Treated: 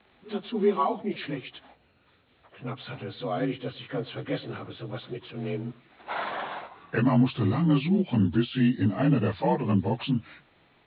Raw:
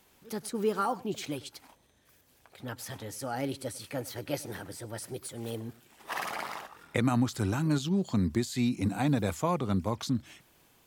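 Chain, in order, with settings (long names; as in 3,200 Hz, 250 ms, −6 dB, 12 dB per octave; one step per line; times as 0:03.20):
partials spread apart or drawn together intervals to 88%
Butterworth low-pass 4,000 Hz 96 dB per octave
level +6 dB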